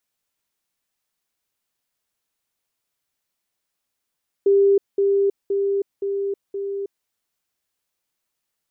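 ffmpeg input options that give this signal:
-f lavfi -i "aevalsrc='pow(10,(-12-3*floor(t/0.52))/20)*sin(2*PI*397*t)*clip(min(mod(t,0.52),0.32-mod(t,0.52))/0.005,0,1)':d=2.6:s=44100"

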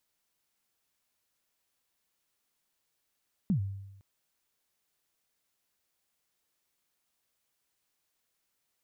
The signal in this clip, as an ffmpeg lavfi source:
-f lavfi -i "aevalsrc='0.0794*pow(10,-3*t/0.96)*sin(2*PI*(220*0.1/log(98/220)*(exp(log(98/220)*min(t,0.1)/0.1)-1)+98*max(t-0.1,0)))':d=0.51:s=44100"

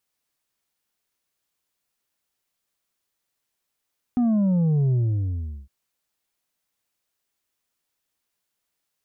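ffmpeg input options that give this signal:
-f lavfi -i "aevalsrc='0.126*clip((1.51-t)/0.76,0,1)*tanh(1.68*sin(2*PI*250*1.51/log(65/250)*(exp(log(65/250)*t/1.51)-1)))/tanh(1.68)':d=1.51:s=44100"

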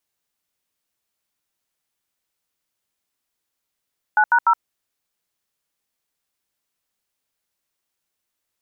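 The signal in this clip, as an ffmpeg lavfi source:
-f lavfi -i "aevalsrc='0.188*clip(min(mod(t,0.148),0.069-mod(t,0.148))/0.002,0,1)*(eq(floor(t/0.148),0)*(sin(2*PI*852*mod(t,0.148))+sin(2*PI*1477*mod(t,0.148)))+eq(floor(t/0.148),1)*(sin(2*PI*941*mod(t,0.148))+sin(2*PI*1477*mod(t,0.148)))+eq(floor(t/0.148),2)*(sin(2*PI*941*mod(t,0.148))+sin(2*PI*1336*mod(t,0.148))))':d=0.444:s=44100"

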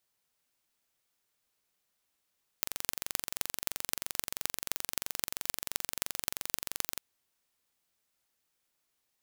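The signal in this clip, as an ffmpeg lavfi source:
-f lavfi -i "aevalsrc='0.891*eq(mod(n,1917),0)*(0.5+0.5*eq(mod(n,11502),0))':d=4.36:s=44100"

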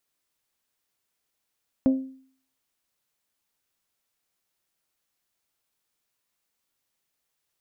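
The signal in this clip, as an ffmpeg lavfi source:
-f lavfi -i "aevalsrc='0.2*pow(10,-3*t/0.53)*sin(2*PI*264*t)+0.0596*pow(10,-3*t/0.326)*sin(2*PI*528*t)+0.0178*pow(10,-3*t/0.287)*sin(2*PI*633.6*t)+0.00531*pow(10,-3*t/0.246)*sin(2*PI*792*t)+0.00158*pow(10,-3*t/0.201)*sin(2*PI*1056*t)':d=0.89:s=44100"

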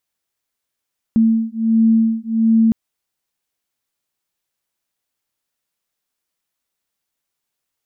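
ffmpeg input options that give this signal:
-f lavfi -i "aevalsrc='0.178*(sin(2*PI*224*t)+sin(2*PI*225.4*t))':d=1.56:s=44100"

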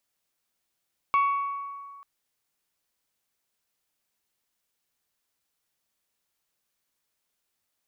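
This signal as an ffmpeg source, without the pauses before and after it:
-f lavfi -i "aevalsrc='0.126*pow(10,-3*t/1.95)*sin(2*PI*1120*t)+0.0355*pow(10,-3*t/1.2)*sin(2*PI*2240*t)+0.01*pow(10,-3*t/1.057)*sin(2*PI*2688*t)+0.00282*pow(10,-3*t/0.904)*sin(2*PI*3360*t)+0.000794*pow(10,-3*t/0.739)*sin(2*PI*4480*t)':d=0.89:s=44100"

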